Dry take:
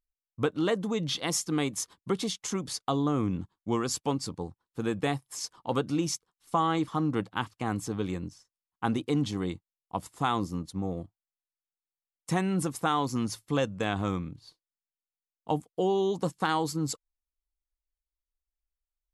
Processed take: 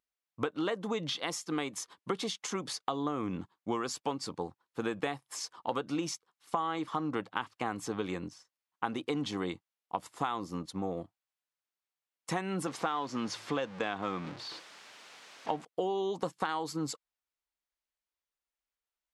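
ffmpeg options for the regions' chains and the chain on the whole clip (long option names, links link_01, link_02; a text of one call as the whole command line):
ffmpeg -i in.wav -filter_complex "[0:a]asettb=1/sr,asplit=3[link_01][link_02][link_03];[link_01]atrim=end=12.674[link_04];[link_02]atrim=start=12.67:end=15.65,asetpts=PTS-STARTPTS,afade=type=in:duration=0.004:curve=qsin,afade=type=out:start_time=2.976:duration=0.004:curve=qsin,aeval=exprs='val(0)+0.5*0.0112*sgn(val(0))':channel_layout=same,highpass=120,lowpass=6000[link_05];[link_03]atrim=start=15.646[link_06];[link_04][link_05]acrossfade=duration=0.004:curve1=hsin:curve2=qsin[link_07];[link_07][link_06]acrossfade=duration=0.004:curve1=qsin:curve2=hsin,highpass=frequency=630:poles=1,acompressor=threshold=-36dB:ratio=6,lowpass=frequency=2900:poles=1,volume=7dB" out.wav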